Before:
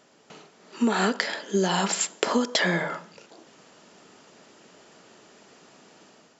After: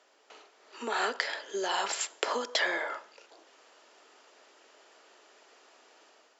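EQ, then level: Bessel high-pass 530 Hz, order 8; air absorption 53 m; -3.0 dB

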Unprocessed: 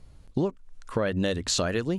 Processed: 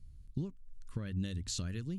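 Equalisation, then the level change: passive tone stack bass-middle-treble 6-0-2; low shelf 310 Hz +10 dB; high shelf 7600 Hz +5.5 dB; +1.0 dB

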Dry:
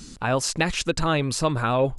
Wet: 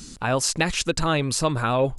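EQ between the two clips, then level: high shelf 5800 Hz +5.5 dB; 0.0 dB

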